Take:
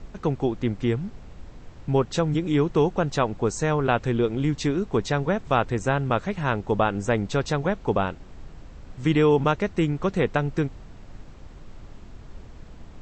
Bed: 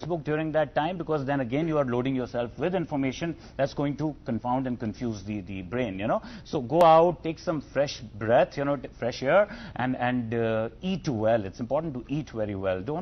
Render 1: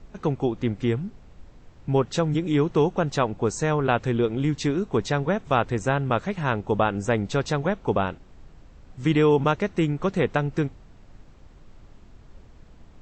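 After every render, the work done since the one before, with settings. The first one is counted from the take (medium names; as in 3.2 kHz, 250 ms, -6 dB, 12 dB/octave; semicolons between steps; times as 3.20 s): noise print and reduce 6 dB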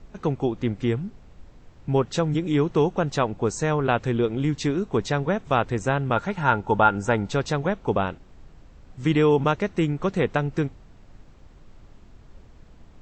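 6.16–7.31 s: small resonant body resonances 890/1400 Hz, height 13 dB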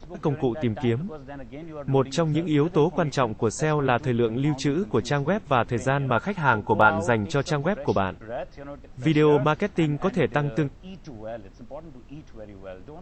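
add bed -12 dB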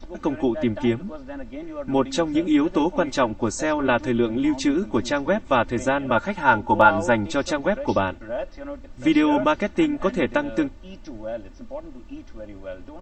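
comb 3.4 ms, depth 93%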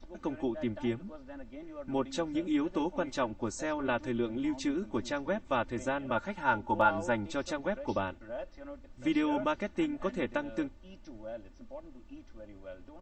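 trim -11 dB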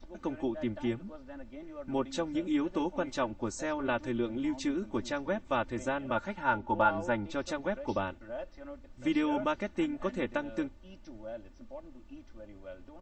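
6.33–7.47 s: distance through air 79 m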